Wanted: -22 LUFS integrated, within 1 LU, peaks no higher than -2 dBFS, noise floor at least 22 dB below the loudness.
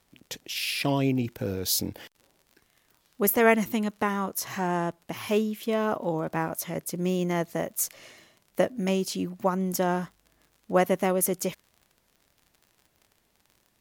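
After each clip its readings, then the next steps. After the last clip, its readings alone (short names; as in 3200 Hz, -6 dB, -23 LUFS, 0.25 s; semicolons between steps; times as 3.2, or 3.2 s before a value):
ticks 39/s; loudness -27.5 LUFS; peak -6.5 dBFS; loudness target -22.0 LUFS
-> de-click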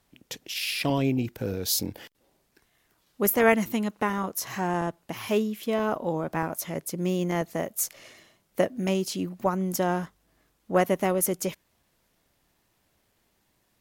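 ticks 0.80/s; loudness -27.5 LUFS; peak -6.5 dBFS; loudness target -22.0 LUFS
-> gain +5.5 dB; limiter -2 dBFS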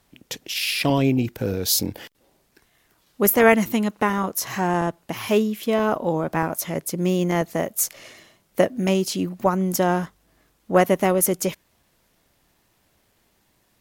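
loudness -22.0 LUFS; peak -2.0 dBFS; noise floor -65 dBFS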